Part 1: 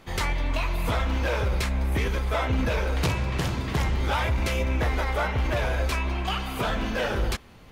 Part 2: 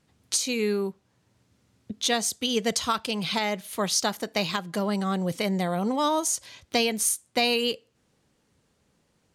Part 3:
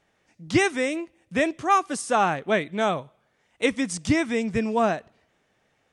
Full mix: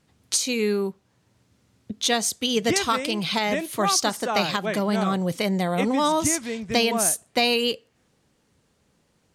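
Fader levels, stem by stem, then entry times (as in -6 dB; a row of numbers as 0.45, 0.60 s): off, +2.5 dB, -5.5 dB; off, 0.00 s, 2.15 s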